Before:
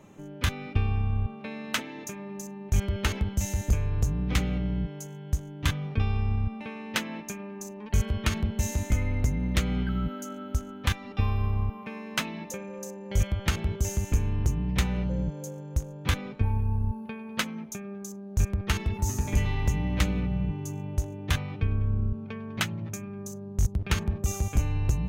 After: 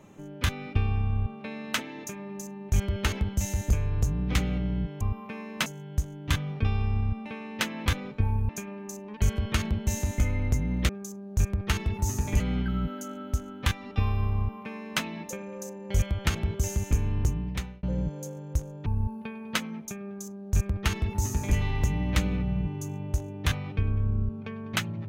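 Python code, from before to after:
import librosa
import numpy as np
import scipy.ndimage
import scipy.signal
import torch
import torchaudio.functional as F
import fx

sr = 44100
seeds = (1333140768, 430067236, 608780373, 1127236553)

y = fx.edit(x, sr, fx.duplicate(start_s=11.58, length_s=0.65, to_s=5.01),
    fx.fade_out_span(start_s=14.48, length_s=0.56),
    fx.move(start_s=16.07, length_s=0.63, to_s=7.21),
    fx.duplicate(start_s=17.89, length_s=1.51, to_s=9.61), tone=tone)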